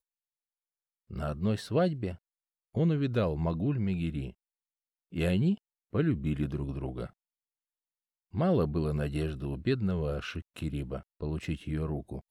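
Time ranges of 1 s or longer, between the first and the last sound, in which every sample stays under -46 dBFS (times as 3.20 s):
7.10–8.34 s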